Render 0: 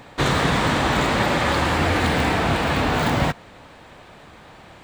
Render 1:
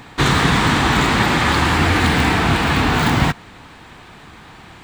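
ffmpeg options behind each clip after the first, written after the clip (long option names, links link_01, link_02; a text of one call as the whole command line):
ffmpeg -i in.wav -af "equalizer=frequency=570:width=2.6:gain=-10.5,volume=5.5dB" out.wav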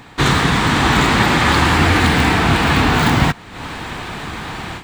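ffmpeg -i in.wav -af "dynaudnorm=framelen=140:gausssize=3:maxgain=14.5dB,volume=-1dB" out.wav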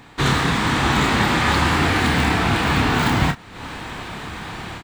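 ffmpeg -i in.wav -filter_complex "[0:a]asplit=2[link_01][link_02];[link_02]adelay=29,volume=-7.5dB[link_03];[link_01][link_03]amix=inputs=2:normalize=0,volume=-5dB" out.wav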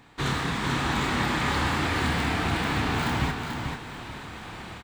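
ffmpeg -i in.wav -af "aecho=1:1:438|876|1314|1752:0.531|0.143|0.0387|0.0104,volume=-9dB" out.wav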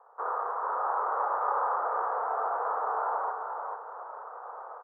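ffmpeg -i in.wav -af "asuperpass=centerf=790:order=12:qfactor=0.89,volume=2.5dB" out.wav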